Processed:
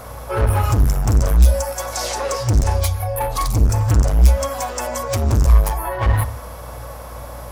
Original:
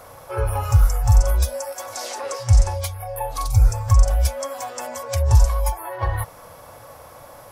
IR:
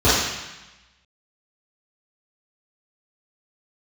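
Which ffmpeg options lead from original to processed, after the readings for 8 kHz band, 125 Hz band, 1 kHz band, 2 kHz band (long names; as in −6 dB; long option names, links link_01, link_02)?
+3.5 dB, +2.5 dB, +4.0 dB, +5.5 dB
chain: -filter_complex "[0:a]aeval=exprs='val(0)+0.00282*(sin(2*PI*60*n/s)+sin(2*PI*2*60*n/s)/2+sin(2*PI*3*60*n/s)/3+sin(2*PI*4*60*n/s)/4+sin(2*PI*5*60*n/s)/5)':channel_layout=same,volume=22.5dB,asoftclip=hard,volume=-22.5dB,asplit=2[link_01][link_02];[1:a]atrim=start_sample=2205,afade=type=out:start_time=0.24:duration=0.01,atrim=end_sample=11025,lowshelf=frequency=110:gain=9.5[link_03];[link_02][link_03]afir=irnorm=-1:irlink=0,volume=-36.5dB[link_04];[link_01][link_04]amix=inputs=2:normalize=0,volume=6.5dB"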